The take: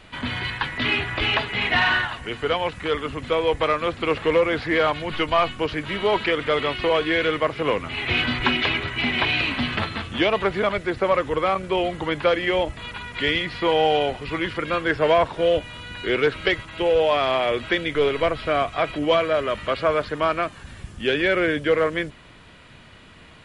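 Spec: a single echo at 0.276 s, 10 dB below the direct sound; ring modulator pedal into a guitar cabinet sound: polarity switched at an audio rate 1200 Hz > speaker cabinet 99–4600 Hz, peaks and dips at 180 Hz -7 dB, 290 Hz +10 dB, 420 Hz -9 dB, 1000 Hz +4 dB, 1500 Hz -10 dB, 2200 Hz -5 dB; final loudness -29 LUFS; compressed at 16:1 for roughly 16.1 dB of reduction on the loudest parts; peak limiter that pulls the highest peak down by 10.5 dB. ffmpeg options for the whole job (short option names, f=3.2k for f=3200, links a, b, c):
-af "acompressor=threshold=-31dB:ratio=16,alimiter=level_in=3.5dB:limit=-24dB:level=0:latency=1,volume=-3.5dB,aecho=1:1:276:0.316,aeval=exprs='val(0)*sgn(sin(2*PI*1200*n/s))':c=same,highpass=99,equalizer=f=180:t=q:w=4:g=-7,equalizer=f=290:t=q:w=4:g=10,equalizer=f=420:t=q:w=4:g=-9,equalizer=f=1k:t=q:w=4:g=4,equalizer=f=1.5k:t=q:w=4:g=-10,equalizer=f=2.2k:t=q:w=4:g=-5,lowpass=f=4.6k:w=0.5412,lowpass=f=4.6k:w=1.3066,volume=9dB"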